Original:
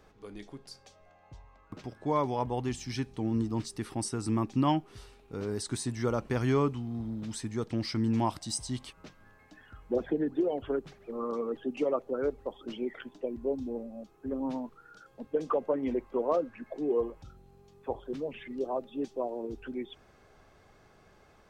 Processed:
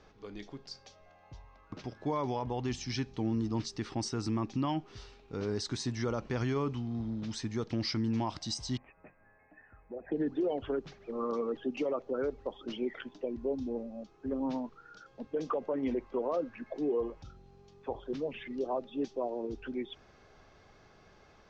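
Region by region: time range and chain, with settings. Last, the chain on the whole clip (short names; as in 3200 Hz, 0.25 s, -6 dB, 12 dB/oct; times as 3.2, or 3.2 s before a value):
8.77–10.12 rippled Chebyshev low-pass 2600 Hz, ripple 9 dB + compressor 2:1, threshold -45 dBFS
whole clip: steep low-pass 6200 Hz 36 dB/oct; high shelf 4000 Hz +5.5 dB; limiter -24 dBFS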